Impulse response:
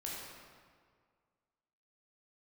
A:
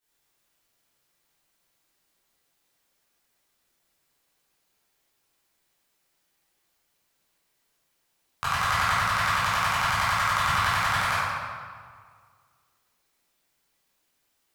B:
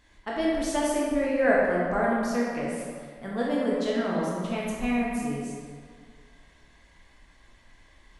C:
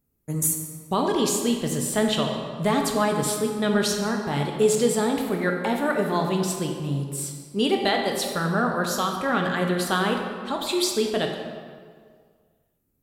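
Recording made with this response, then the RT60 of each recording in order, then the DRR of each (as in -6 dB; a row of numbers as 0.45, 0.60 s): B; 1.9, 1.9, 1.9 s; -14.5, -5.0, 2.0 dB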